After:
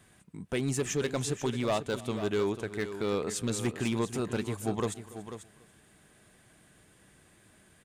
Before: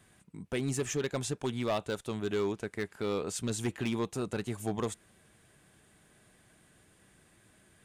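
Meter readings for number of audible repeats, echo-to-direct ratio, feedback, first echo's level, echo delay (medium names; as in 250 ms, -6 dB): 3, -10.5 dB, no regular repeats, -20.5 dB, 285 ms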